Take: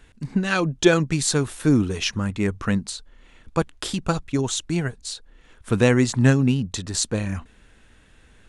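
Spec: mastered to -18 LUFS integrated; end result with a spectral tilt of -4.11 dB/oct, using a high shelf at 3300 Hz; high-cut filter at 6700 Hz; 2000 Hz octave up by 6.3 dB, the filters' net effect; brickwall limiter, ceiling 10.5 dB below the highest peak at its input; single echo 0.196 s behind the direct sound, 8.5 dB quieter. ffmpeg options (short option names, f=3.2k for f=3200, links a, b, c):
-af "lowpass=6.7k,equalizer=f=2k:t=o:g=6,highshelf=f=3.3k:g=8,alimiter=limit=-12dB:level=0:latency=1,aecho=1:1:196:0.376,volume=5.5dB"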